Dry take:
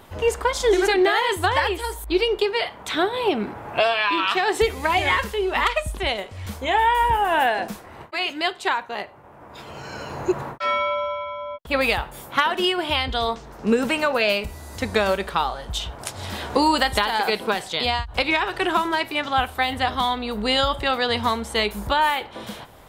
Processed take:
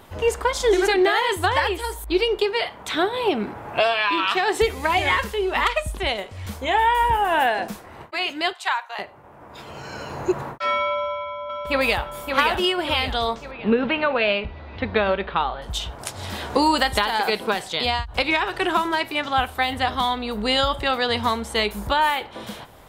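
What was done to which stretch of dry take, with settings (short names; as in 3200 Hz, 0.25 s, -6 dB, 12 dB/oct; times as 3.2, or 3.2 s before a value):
8.53–8.99 HPF 720 Hz 24 dB/oct
10.92–12.02 echo throw 0.57 s, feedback 50%, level -5 dB
13.51–15.62 steep low-pass 3700 Hz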